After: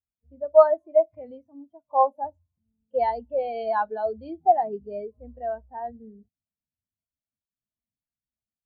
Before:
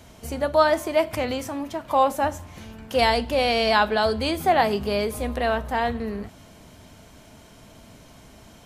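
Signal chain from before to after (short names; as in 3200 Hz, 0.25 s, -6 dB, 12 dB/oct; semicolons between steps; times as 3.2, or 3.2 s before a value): low-pass opened by the level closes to 2900 Hz, open at -18 dBFS; spectral expander 2.5:1; gain +1.5 dB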